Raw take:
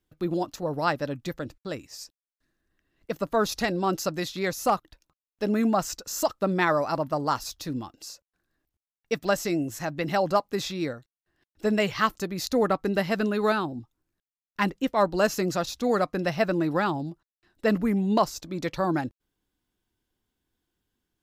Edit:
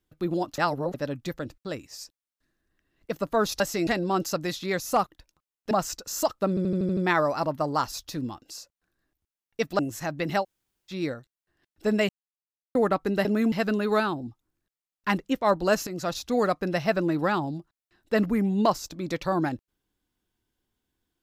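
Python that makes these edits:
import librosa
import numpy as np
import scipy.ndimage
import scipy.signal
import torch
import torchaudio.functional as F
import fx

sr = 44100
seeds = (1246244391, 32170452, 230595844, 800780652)

y = fx.edit(x, sr, fx.reverse_span(start_s=0.58, length_s=0.36),
    fx.move(start_s=5.44, length_s=0.27, to_s=13.04),
    fx.stutter(start_s=6.49, slice_s=0.08, count=7),
    fx.move(start_s=9.31, length_s=0.27, to_s=3.6),
    fx.room_tone_fill(start_s=10.21, length_s=0.49, crossfade_s=0.06),
    fx.silence(start_s=11.88, length_s=0.66),
    fx.fade_in_from(start_s=15.39, length_s=0.27, floor_db=-13.0), tone=tone)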